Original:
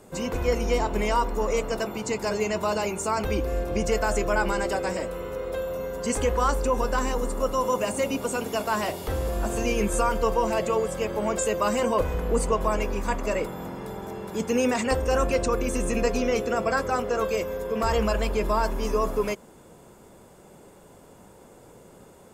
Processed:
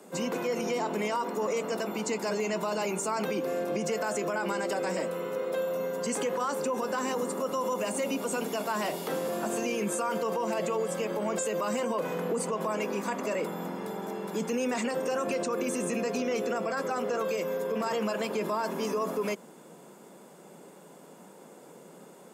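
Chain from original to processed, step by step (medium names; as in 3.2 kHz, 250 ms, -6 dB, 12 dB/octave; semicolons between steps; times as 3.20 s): steep high-pass 150 Hz 72 dB/octave; peak limiter -22 dBFS, peak gain reduction 11 dB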